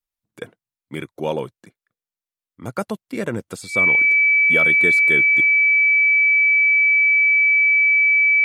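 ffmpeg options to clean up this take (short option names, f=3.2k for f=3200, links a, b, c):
-af "bandreject=f=2.3k:w=30"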